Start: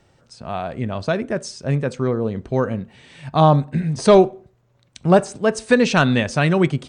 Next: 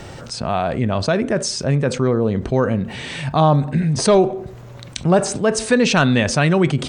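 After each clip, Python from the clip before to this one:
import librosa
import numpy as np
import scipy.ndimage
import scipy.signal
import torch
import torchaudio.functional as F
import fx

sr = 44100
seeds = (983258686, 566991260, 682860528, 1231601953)

y = fx.env_flatten(x, sr, amount_pct=50)
y = y * 10.0 ** (-2.5 / 20.0)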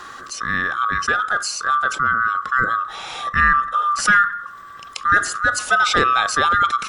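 y = fx.band_swap(x, sr, width_hz=1000)
y = y * 10.0 ** (-1.5 / 20.0)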